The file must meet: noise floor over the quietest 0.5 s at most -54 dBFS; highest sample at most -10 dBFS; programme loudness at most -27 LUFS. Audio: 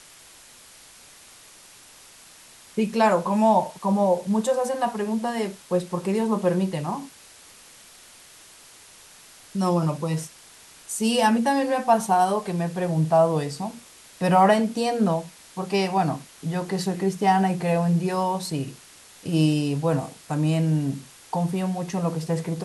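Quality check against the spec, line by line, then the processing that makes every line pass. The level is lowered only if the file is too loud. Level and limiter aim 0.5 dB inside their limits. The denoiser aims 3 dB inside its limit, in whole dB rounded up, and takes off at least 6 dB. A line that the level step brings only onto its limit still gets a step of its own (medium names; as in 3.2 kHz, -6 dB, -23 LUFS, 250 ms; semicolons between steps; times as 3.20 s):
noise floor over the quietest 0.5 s -49 dBFS: fail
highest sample -7.0 dBFS: fail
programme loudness -24.0 LUFS: fail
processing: noise reduction 6 dB, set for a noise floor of -49 dBFS; trim -3.5 dB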